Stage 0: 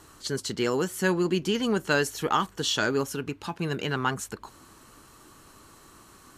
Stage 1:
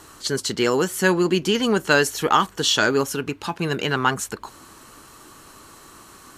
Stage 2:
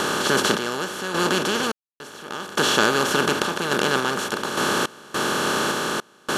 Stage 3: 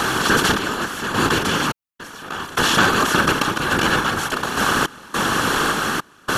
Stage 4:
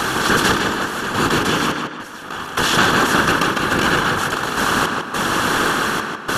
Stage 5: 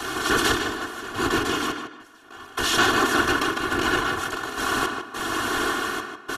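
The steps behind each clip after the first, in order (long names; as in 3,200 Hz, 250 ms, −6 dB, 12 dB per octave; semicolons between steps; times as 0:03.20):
low-shelf EQ 250 Hz −5 dB; level +7.5 dB
compressor on every frequency bin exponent 0.2; sample-and-hold tremolo, depth 100%; level −6.5 dB
octave-band graphic EQ 500/4,000/8,000 Hz −9/−4/−4 dB; random phases in short frames; level +6 dB
tape delay 154 ms, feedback 48%, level −3 dB, low-pass 3,600 Hz
comb filter 2.8 ms, depth 79%; multiband upward and downward expander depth 70%; level −8 dB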